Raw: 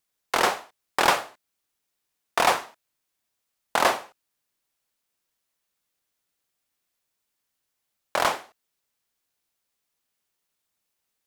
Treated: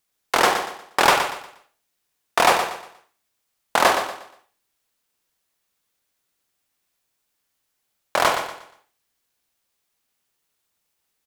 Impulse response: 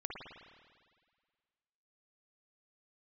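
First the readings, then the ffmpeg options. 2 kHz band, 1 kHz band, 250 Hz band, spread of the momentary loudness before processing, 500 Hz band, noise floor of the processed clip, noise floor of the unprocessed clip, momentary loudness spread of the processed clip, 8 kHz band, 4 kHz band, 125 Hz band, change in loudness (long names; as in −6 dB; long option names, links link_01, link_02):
+5.0 dB, +5.0 dB, +4.5 dB, 11 LU, +5.0 dB, −76 dBFS, −80 dBFS, 15 LU, +4.5 dB, +4.5 dB, +5.0 dB, +4.0 dB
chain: -filter_complex "[0:a]aecho=1:1:119|238|357|476:0.376|0.12|0.0385|0.0123,asplit=2[link_01][link_02];[1:a]atrim=start_sample=2205,atrim=end_sample=4410[link_03];[link_02][link_03]afir=irnorm=-1:irlink=0,volume=-1dB[link_04];[link_01][link_04]amix=inputs=2:normalize=0"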